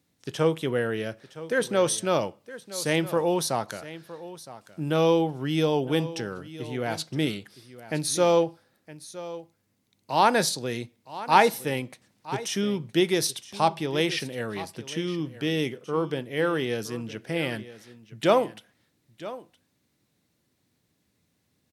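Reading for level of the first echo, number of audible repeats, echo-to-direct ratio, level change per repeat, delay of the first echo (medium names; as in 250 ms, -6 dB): -16.0 dB, 1, -16.0 dB, no regular repeats, 965 ms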